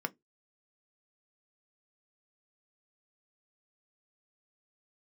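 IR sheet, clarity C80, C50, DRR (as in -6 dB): 40.5 dB, 29.0 dB, 8.0 dB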